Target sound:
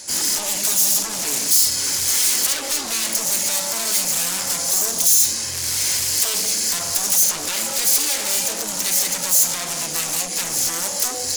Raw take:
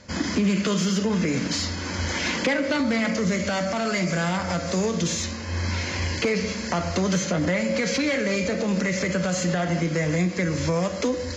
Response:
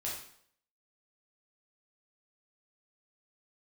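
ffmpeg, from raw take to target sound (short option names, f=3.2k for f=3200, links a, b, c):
-filter_complex "[0:a]aeval=exprs='0.266*sin(PI/2*3.98*val(0)/0.266)':c=same,bass=f=250:g=-9,treble=f=4k:g=13,asoftclip=type=tanh:threshold=-7.5dB,aemphasis=mode=production:type=75fm,asplit=2[a][b];[b]asetrate=66075,aresample=44100,atempo=0.66742,volume=-4dB[c];[a][c]amix=inputs=2:normalize=0,volume=-15.5dB"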